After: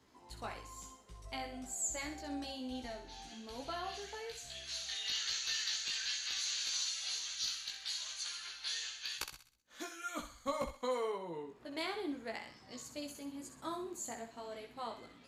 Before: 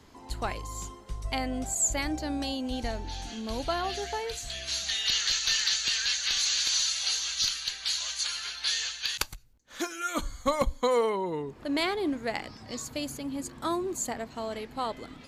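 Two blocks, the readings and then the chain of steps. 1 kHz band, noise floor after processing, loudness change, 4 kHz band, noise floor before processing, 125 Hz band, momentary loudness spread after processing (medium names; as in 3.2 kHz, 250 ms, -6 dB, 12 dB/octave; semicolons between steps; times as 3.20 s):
-10.5 dB, -61 dBFS, -10.5 dB, -10.0 dB, -50 dBFS, -16.0 dB, 13 LU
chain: bass shelf 81 Hz -11.5 dB; chorus 1.1 Hz, delay 15.5 ms, depth 2.5 ms; on a send: thinning echo 64 ms, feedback 43%, high-pass 740 Hz, level -7.5 dB; on the sum: trim -8 dB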